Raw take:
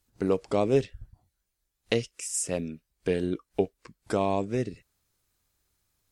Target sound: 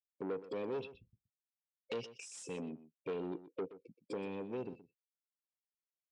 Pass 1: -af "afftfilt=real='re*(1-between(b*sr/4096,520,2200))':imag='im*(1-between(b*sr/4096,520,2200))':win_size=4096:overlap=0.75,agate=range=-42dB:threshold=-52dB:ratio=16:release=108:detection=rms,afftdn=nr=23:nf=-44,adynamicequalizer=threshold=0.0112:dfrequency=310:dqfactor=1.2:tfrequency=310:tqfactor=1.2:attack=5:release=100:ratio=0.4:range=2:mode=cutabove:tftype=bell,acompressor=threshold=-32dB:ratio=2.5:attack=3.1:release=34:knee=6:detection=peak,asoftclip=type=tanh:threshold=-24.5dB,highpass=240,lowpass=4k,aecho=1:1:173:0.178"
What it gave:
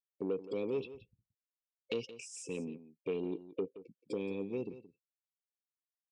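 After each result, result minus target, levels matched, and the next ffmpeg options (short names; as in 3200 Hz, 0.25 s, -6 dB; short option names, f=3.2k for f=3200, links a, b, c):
echo 49 ms late; soft clip: distortion -10 dB
-af "afftfilt=real='re*(1-between(b*sr/4096,520,2200))':imag='im*(1-between(b*sr/4096,520,2200))':win_size=4096:overlap=0.75,agate=range=-42dB:threshold=-52dB:ratio=16:release=108:detection=rms,afftdn=nr=23:nf=-44,adynamicequalizer=threshold=0.0112:dfrequency=310:dqfactor=1.2:tfrequency=310:tqfactor=1.2:attack=5:release=100:ratio=0.4:range=2:mode=cutabove:tftype=bell,acompressor=threshold=-32dB:ratio=2.5:attack=3.1:release=34:knee=6:detection=peak,asoftclip=type=tanh:threshold=-24.5dB,highpass=240,lowpass=4k,aecho=1:1:124:0.178"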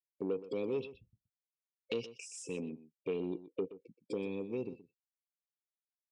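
soft clip: distortion -10 dB
-af "afftfilt=real='re*(1-between(b*sr/4096,520,2200))':imag='im*(1-between(b*sr/4096,520,2200))':win_size=4096:overlap=0.75,agate=range=-42dB:threshold=-52dB:ratio=16:release=108:detection=rms,afftdn=nr=23:nf=-44,adynamicequalizer=threshold=0.0112:dfrequency=310:dqfactor=1.2:tfrequency=310:tqfactor=1.2:attack=5:release=100:ratio=0.4:range=2:mode=cutabove:tftype=bell,acompressor=threshold=-32dB:ratio=2.5:attack=3.1:release=34:knee=6:detection=peak,asoftclip=type=tanh:threshold=-33dB,highpass=240,lowpass=4k,aecho=1:1:124:0.178"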